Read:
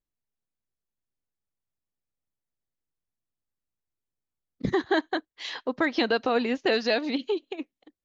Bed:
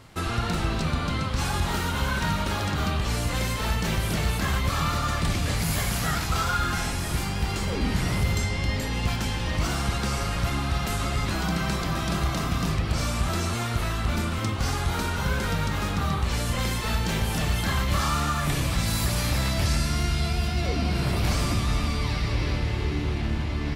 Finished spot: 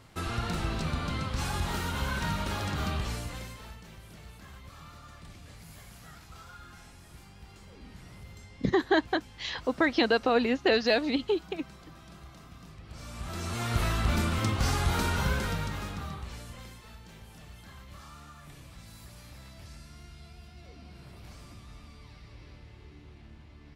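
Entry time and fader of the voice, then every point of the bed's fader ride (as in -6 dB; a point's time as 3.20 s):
4.00 s, 0.0 dB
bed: 3.00 s -5.5 dB
3.86 s -23.5 dB
12.76 s -23.5 dB
13.77 s -1 dB
15.18 s -1 dB
16.97 s -24 dB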